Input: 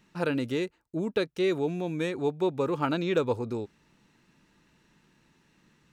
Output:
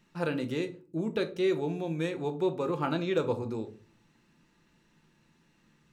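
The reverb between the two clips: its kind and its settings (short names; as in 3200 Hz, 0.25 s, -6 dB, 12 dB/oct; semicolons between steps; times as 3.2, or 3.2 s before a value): shoebox room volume 240 m³, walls furnished, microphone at 0.8 m; gain -3.5 dB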